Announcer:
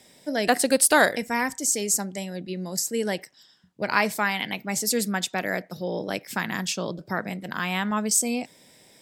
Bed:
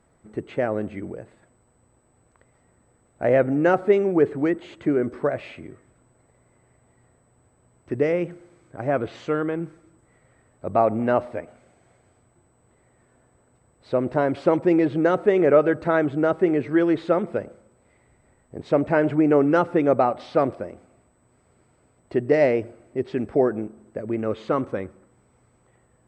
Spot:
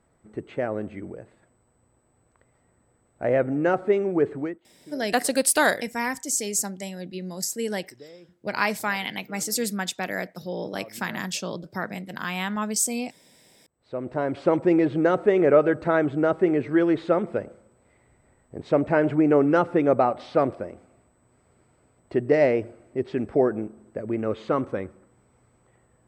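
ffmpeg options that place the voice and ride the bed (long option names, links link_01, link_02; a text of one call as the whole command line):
ffmpeg -i stem1.wav -i stem2.wav -filter_complex "[0:a]adelay=4650,volume=-2dB[link_01];[1:a]volume=20dB,afade=type=out:start_time=4.36:duration=0.23:silence=0.0891251,afade=type=in:start_time=13.64:duration=0.94:silence=0.0668344[link_02];[link_01][link_02]amix=inputs=2:normalize=0" out.wav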